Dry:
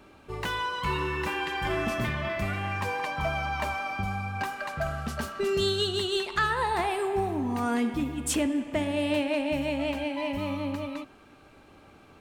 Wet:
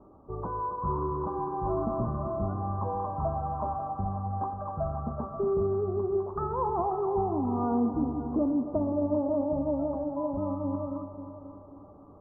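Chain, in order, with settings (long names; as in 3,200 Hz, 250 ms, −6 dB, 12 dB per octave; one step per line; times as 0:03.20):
Butterworth low-pass 1,200 Hz 72 dB per octave
notch filter 890 Hz, Q 24
echo machine with several playback heads 268 ms, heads first and second, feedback 45%, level −14 dB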